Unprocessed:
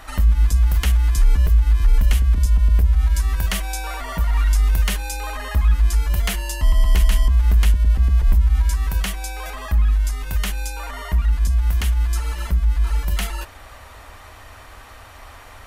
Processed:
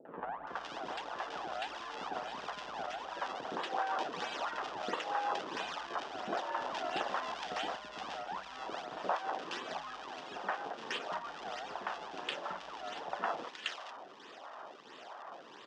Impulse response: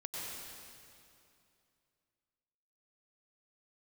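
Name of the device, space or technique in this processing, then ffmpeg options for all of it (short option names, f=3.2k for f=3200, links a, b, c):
circuit-bent sampling toy: -filter_complex "[0:a]equalizer=f=65:w=1.6:g=-11.5,acrusher=samples=37:mix=1:aa=0.000001:lfo=1:lforange=59.2:lforate=1.5,highpass=f=170:p=1,highpass=550,equalizer=f=740:t=q:w=4:g=4,equalizer=f=2.2k:t=q:w=4:g=-9,equalizer=f=4.2k:t=q:w=4:g=-8,lowpass=f=4.7k:w=0.5412,lowpass=f=4.7k:w=1.3066,acrossover=split=490|1800[a][b][c];[b]adelay=50[d];[c]adelay=470[e];[a][d][e]amix=inputs=3:normalize=0"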